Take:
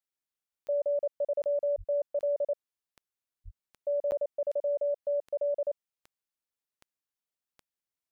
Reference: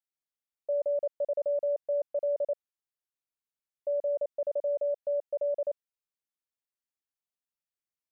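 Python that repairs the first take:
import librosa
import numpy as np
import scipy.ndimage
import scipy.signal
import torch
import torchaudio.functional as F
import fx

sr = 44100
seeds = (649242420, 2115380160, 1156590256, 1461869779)

y = fx.fix_declick_ar(x, sr, threshold=10.0)
y = fx.highpass(y, sr, hz=140.0, slope=24, at=(1.77, 1.89), fade=0.02)
y = fx.highpass(y, sr, hz=140.0, slope=24, at=(3.44, 3.56), fade=0.02)
y = fx.fix_interpolate(y, sr, at_s=(4.11,), length_ms=9.9)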